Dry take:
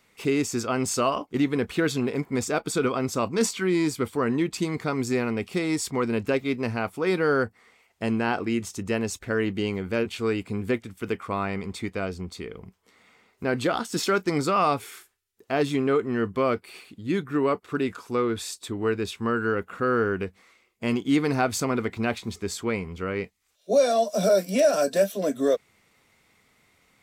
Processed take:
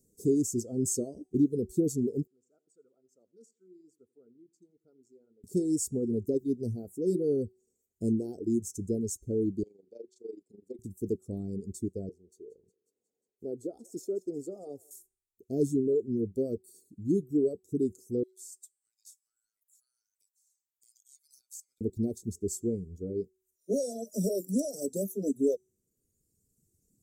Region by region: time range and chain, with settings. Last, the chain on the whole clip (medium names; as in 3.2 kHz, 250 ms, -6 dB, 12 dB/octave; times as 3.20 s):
2.27–5.44 s: band-pass filter 1.4 kHz, Q 9.2 + feedback delay 85 ms, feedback 38%, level -13.5 dB
9.63–10.79 s: band-pass 670–3400 Hz + AM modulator 24 Hz, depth 55%
12.09–14.91 s: three-band isolator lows -18 dB, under 410 Hz, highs -14 dB, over 2 kHz + thinning echo 180 ms, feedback 66%, high-pass 970 Hz, level -10 dB
18.23–21.81 s: steep high-pass 1.7 kHz + compression 4:1, threshold -40 dBFS
whole clip: elliptic band-stop 410–6800 Hz, stop band 50 dB; de-hum 375.3 Hz, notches 28; reverb removal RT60 1.6 s